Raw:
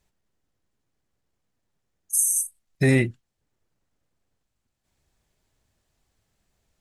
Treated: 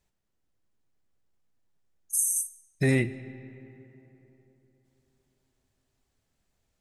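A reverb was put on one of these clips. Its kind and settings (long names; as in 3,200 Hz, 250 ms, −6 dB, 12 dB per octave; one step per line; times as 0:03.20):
comb and all-pass reverb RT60 3.6 s, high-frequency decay 0.5×, pre-delay 35 ms, DRR 15 dB
level −4.5 dB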